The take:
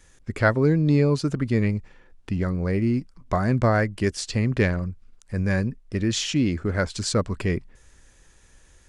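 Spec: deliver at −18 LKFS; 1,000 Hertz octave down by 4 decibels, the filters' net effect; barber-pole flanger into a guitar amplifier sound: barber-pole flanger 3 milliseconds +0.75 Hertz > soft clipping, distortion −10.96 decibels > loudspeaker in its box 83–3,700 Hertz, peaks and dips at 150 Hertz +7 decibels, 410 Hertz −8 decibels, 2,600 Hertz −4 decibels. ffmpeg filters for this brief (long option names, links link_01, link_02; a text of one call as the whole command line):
ffmpeg -i in.wav -filter_complex "[0:a]equalizer=frequency=1000:width_type=o:gain=-5.5,asplit=2[link_01][link_02];[link_02]adelay=3,afreqshift=0.75[link_03];[link_01][link_03]amix=inputs=2:normalize=1,asoftclip=threshold=-22.5dB,highpass=83,equalizer=frequency=150:width_type=q:width=4:gain=7,equalizer=frequency=410:width_type=q:width=4:gain=-8,equalizer=frequency=2600:width_type=q:width=4:gain=-4,lowpass=frequency=3700:width=0.5412,lowpass=frequency=3700:width=1.3066,volume=12dB" out.wav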